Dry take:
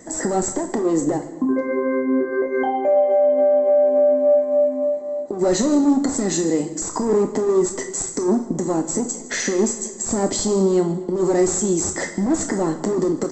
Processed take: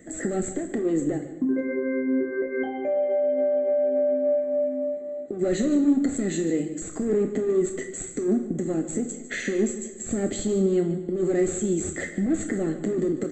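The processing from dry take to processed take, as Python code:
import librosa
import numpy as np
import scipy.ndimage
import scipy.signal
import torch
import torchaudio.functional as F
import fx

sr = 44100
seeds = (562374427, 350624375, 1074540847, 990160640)

p1 = fx.fixed_phaser(x, sr, hz=2300.0, stages=4)
p2 = p1 + fx.echo_single(p1, sr, ms=148, db=-15.0, dry=0)
y = F.gain(torch.from_numpy(p2), -3.0).numpy()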